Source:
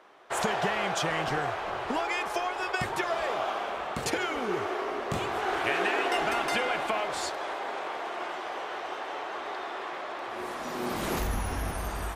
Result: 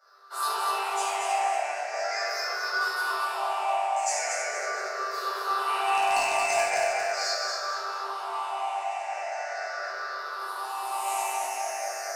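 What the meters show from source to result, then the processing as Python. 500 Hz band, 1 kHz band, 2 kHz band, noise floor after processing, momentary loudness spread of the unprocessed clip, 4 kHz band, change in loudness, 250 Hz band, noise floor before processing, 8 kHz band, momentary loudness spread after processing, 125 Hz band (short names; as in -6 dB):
-0.5 dB, +4.0 dB, +1.5 dB, -35 dBFS, 8 LU, +2.0 dB, +2.5 dB, under -15 dB, -37 dBFS, +7.5 dB, 9 LU, under -25 dB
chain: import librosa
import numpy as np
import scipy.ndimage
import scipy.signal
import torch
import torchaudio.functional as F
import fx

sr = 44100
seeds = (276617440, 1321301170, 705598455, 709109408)

y = fx.spec_ripple(x, sr, per_octave=0.59, drift_hz=-0.4, depth_db=16)
y = scipy.signal.sosfilt(scipy.signal.cheby2(4, 50, 220.0, 'highpass', fs=sr, output='sos'), y)
y = fx.room_shoebox(y, sr, seeds[0], volume_m3=1000.0, walls='mixed', distance_m=7.1)
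y = 10.0 ** (-4.5 / 20.0) * (np.abs((y / 10.0 ** (-4.5 / 20.0) + 3.0) % 4.0 - 2.0) - 1.0)
y = fx.high_shelf_res(y, sr, hz=4200.0, db=6.0, q=3.0)
y = fx.notch(y, sr, hz=3200.0, q=13.0)
y = fx.resonator_bank(y, sr, root=43, chord='sus4', decay_s=0.41)
y = fx.echo_feedback(y, sr, ms=232, feedback_pct=41, wet_db=-4.5)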